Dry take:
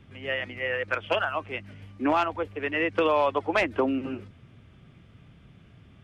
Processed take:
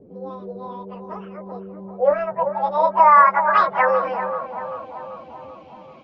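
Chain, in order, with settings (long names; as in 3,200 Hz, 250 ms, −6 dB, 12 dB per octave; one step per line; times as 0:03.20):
phase-vocoder pitch shift without resampling +11.5 semitones
low-pass filter sweep 470 Hz → 2,700 Hz, 0:01.45–0:04.65
feedback echo with a band-pass in the loop 388 ms, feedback 65%, band-pass 700 Hz, level −8 dB
level +7.5 dB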